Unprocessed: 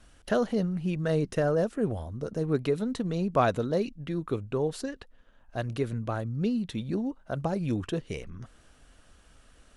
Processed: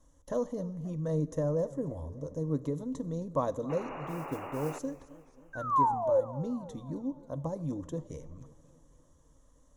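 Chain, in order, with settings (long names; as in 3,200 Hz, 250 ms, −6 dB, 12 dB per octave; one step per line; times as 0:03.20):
0:05.53–0:06.21: sound drawn into the spectrogram fall 500–1,600 Hz −21 dBFS
EQ curve with evenly spaced ripples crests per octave 1.1, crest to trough 12 dB
convolution reverb, pre-delay 3 ms, DRR 15.5 dB
0:04.07–0:04.77: noise that follows the level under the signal 20 dB
0:03.69–0:04.79: sound drawn into the spectrogram noise 250–2,900 Hz −30 dBFS
flat-topped bell 2,500 Hz −14.5 dB
feedback echo with a swinging delay time 266 ms, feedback 54%, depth 151 cents, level −19 dB
level −7.5 dB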